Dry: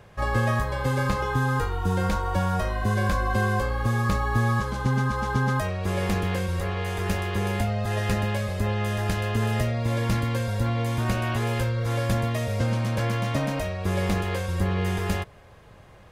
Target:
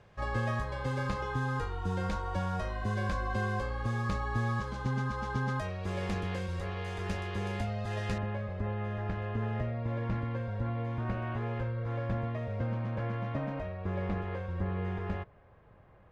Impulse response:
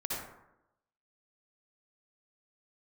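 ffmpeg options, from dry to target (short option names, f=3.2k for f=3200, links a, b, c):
-af "asetnsamples=n=441:p=0,asendcmd='8.18 lowpass f 1800',lowpass=6.5k,volume=-8.5dB"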